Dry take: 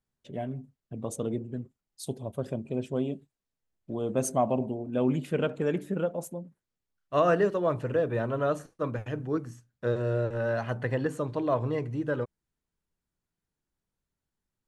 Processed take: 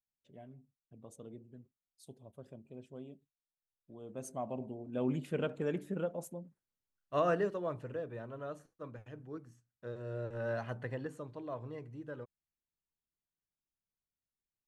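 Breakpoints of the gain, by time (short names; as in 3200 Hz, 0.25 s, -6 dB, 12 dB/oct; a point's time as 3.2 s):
3.96 s -18.5 dB
5.12 s -7 dB
7.28 s -7 dB
8.21 s -15.5 dB
9.93 s -15.5 dB
10.52 s -7 dB
11.35 s -15 dB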